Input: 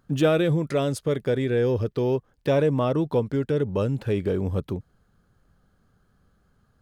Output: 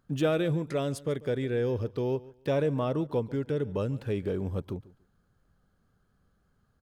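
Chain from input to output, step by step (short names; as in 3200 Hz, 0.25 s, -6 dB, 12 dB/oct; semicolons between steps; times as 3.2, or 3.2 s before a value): feedback echo 0.143 s, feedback 21%, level -20 dB; gain -6 dB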